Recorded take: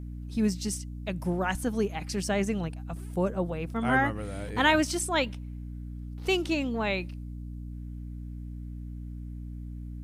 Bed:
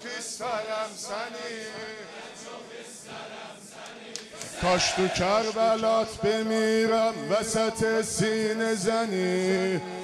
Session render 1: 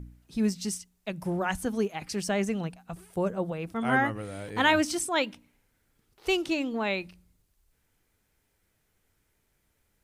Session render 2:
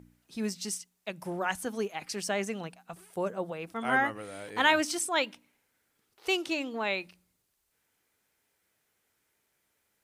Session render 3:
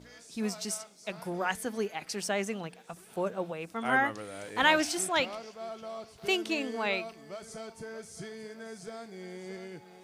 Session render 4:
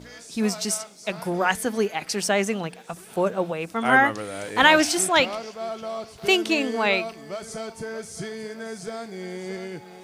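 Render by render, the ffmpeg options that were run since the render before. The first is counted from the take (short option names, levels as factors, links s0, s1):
-af "bandreject=f=60:t=h:w=4,bandreject=f=120:t=h:w=4,bandreject=f=180:t=h:w=4,bandreject=f=240:t=h:w=4,bandreject=f=300:t=h:w=4"
-af "highpass=f=460:p=1"
-filter_complex "[1:a]volume=0.133[s0];[0:a][s0]amix=inputs=2:normalize=0"
-af "volume=2.82,alimiter=limit=0.794:level=0:latency=1"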